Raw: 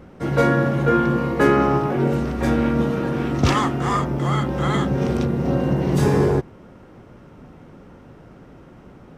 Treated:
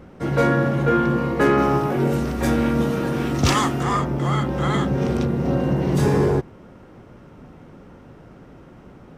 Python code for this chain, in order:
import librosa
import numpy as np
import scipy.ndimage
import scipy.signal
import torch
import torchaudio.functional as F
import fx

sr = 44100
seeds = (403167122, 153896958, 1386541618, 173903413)

y = fx.high_shelf(x, sr, hz=fx.line((1.57, 7000.0), (3.82, 4200.0)), db=11.0, at=(1.57, 3.82), fade=0.02)
y = 10.0 ** (-7.0 / 20.0) * np.tanh(y / 10.0 ** (-7.0 / 20.0))